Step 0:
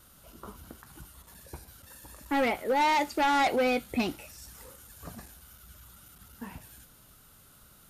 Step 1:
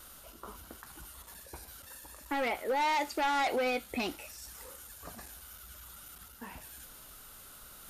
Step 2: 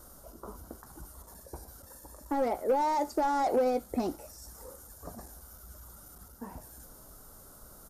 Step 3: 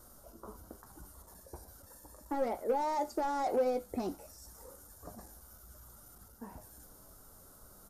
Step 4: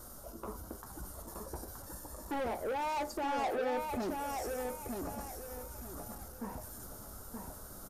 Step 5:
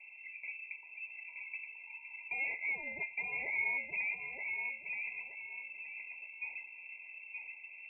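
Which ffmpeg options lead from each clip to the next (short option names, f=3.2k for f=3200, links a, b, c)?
-af "equalizer=f=130:w=0.64:g=-11,areverse,acompressor=mode=upward:threshold=-43dB:ratio=2.5,areverse,alimiter=limit=-23.5dB:level=0:latency=1"
-af "firequalizer=gain_entry='entry(610,0);entry(2600,-24);entry(5300,-7)':delay=0.05:min_phase=1,aeval=exprs='0.0631*(cos(1*acos(clip(val(0)/0.0631,-1,1)))-cos(1*PI/2))+0.00708*(cos(3*acos(clip(val(0)/0.0631,-1,1)))-cos(3*PI/2))+0.00224*(cos(5*acos(clip(val(0)/0.0631,-1,1)))-cos(5*PI/2))':c=same,volume=6.5dB"
-af "flanger=delay=8.1:depth=3.2:regen=69:speed=0.34:shape=triangular"
-filter_complex "[0:a]alimiter=level_in=2.5dB:limit=-24dB:level=0:latency=1:release=349,volume=-2.5dB,asoftclip=type=tanh:threshold=-39.5dB,asplit=2[a][b];[b]adelay=924,lowpass=f=3.8k:p=1,volume=-4dB,asplit=2[c][d];[d]adelay=924,lowpass=f=3.8k:p=1,volume=0.33,asplit=2[e][f];[f]adelay=924,lowpass=f=3.8k:p=1,volume=0.33,asplit=2[g][h];[h]adelay=924,lowpass=f=3.8k:p=1,volume=0.33[i];[c][e][g][i]amix=inputs=4:normalize=0[j];[a][j]amix=inputs=2:normalize=0,volume=7dB"
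-af "lowpass=f=2.3k:t=q:w=0.5098,lowpass=f=2.3k:t=q:w=0.6013,lowpass=f=2.3k:t=q:w=0.9,lowpass=f=2.3k:t=q:w=2.563,afreqshift=-2700,afftfilt=real='re*eq(mod(floor(b*sr/1024/1000),2),0)':imag='im*eq(mod(floor(b*sr/1024/1000),2),0)':win_size=1024:overlap=0.75"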